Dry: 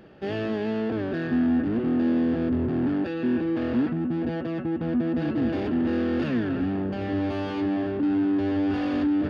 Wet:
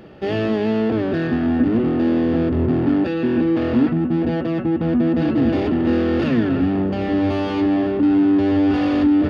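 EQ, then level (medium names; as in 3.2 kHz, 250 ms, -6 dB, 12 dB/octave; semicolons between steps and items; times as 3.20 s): bass shelf 140 Hz +3 dB; hum notches 50/100/150/200/250 Hz; band-stop 1.6 kHz, Q 11; +7.5 dB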